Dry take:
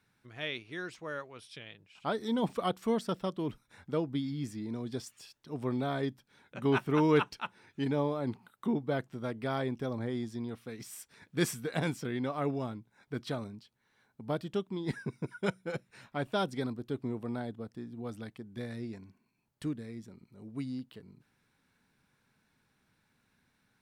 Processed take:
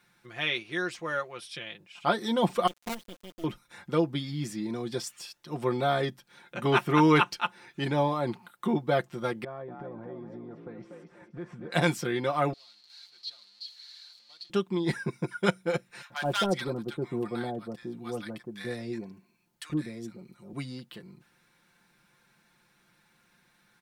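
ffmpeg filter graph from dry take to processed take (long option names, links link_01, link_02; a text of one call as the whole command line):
ffmpeg -i in.wav -filter_complex "[0:a]asettb=1/sr,asplit=3[link_01][link_02][link_03];[link_01]atrim=end=2.674[link_04];[link_02]atrim=start=2.67:end=3.44,asetpts=PTS-STARTPTS,afade=type=in:duration=0.004:curve=qsin,afade=type=out:start_time=0.766:duration=0.004:curve=qsin,asplit=3[link_05][link_06][link_07];[link_05]bandpass=frequency=270:width_type=q:width=8,volume=0dB[link_08];[link_06]bandpass=frequency=2290:width_type=q:width=8,volume=-6dB[link_09];[link_07]bandpass=frequency=3010:width_type=q:width=8,volume=-9dB[link_10];[link_08][link_09][link_10]amix=inputs=3:normalize=0,acrusher=bits=7:dc=4:mix=0:aa=0.000001[link_11];[link_03]atrim=start=3.436[link_12];[link_04][link_11]acrossfade=duration=0.004:curve1=hsin:curve2=qsin[link_13];[link_13][link_12]acrossfade=duration=0.004:curve1=qsin:curve2=hsin,asettb=1/sr,asplit=3[link_14][link_15][link_16];[link_14]atrim=end=9.444[link_17];[link_15]atrim=start=9.44:end=11.72,asetpts=PTS-STARTPTS,afade=type=in:duration=0.004:curve=qsin,afade=type=out:start_time=2.276:duration=0.004:curve=qsin,lowpass=1100,acompressor=threshold=-43dB:ratio=8:attack=3.2:release=140:knee=1:detection=peak,asplit=5[link_18][link_19][link_20][link_21][link_22];[link_19]adelay=240,afreqshift=48,volume=-6dB[link_23];[link_20]adelay=480,afreqshift=96,volume=-15.6dB[link_24];[link_21]adelay=720,afreqshift=144,volume=-25.3dB[link_25];[link_22]adelay=960,afreqshift=192,volume=-34.9dB[link_26];[link_18][link_23][link_24][link_25][link_26]amix=inputs=5:normalize=0,atrim=end_sample=100548[link_27];[link_16]atrim=start=11.716[link_28];[link_17][link_27]acrossfade=duration=0.004:curve1=hsin:curve2=qsin[link_29];[link_29][link_28]acrossfade=duration=0.004:curve1=qsin:curve2=hsin,asettb=1/sr,asplit=3[link_30][link_31][link_32];[link_30]atrim=end=12.534[link_33];[link_31]atrim=start=12.53:end=14.5,asetpts=PTS-STARTPTS,afade=type=in:duration=0.004:curve=qsin,afade=type=out:start_time=1.966:duration=0.004:curve=qsin,aeval=exprs='val(0)+0.5*0.0168*sgn(val(0))':channel_layout=same,bandpass=frequency=4300:width_type=q:width=15[link_34];[link_32]atrim=start=14.496[link_35];[link_33][link_34]acrossfade=duration=0.004:curve1=hsin:curve2=qsin[link_36];[link_36][link_35]acrossfade=duration=0.004:curve1=qsin:curve2=hsin,asettb=1/sr,asplit=3[link_37][link_38][link_39];[link_37]atrim=end=16.024[link_40];[link_38]atrim=start=16.02:end=20.53,asetpts=PTS-STARTPTS,afade=type=in:duration=0.004:curve=qsin,afade=type=out:start_time=4.506:duration=0.004:curve=qsin,aeval=exprs='0.0596*(abs(mod(val(0)/0.0596+3,4)-2)-1)':channel_layout=same,acrossover=split=1000[link_41][link_42];[link_41]adelay=80[link_43];[link_43][link_42]amix=inputs=2:normalize=0,atrim=end_sample=198891[link_44];[link_39]atrim=start=20.526[link_45];[link_40][link_44]acrossfade=duration=0.004:curve1=hsin:curve2=qsin[link_46];[link_46][link_45]acrossfade=duration=0.004:curve1=qsin:curve2=hsin,lowshelf=frequency=290:gain=-7.5,aecho=1:1:5.7:0.67,volume=7.5dB" out.wav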